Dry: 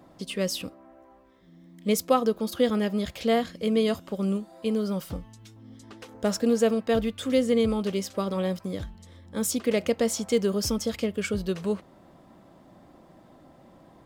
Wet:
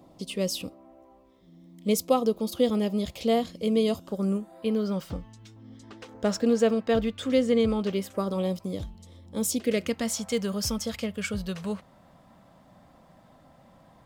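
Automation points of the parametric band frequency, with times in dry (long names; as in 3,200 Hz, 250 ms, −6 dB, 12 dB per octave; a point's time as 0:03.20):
parametric band −12.5 dB 0.64 octaves
0:03.93 1,600 Hz
0:04.93 12,000 Hz
0:07.86 12,000 Hz
0:08.39 1,600 Hz
0:09.49 1,600 Hz
0:10.14 350 Hz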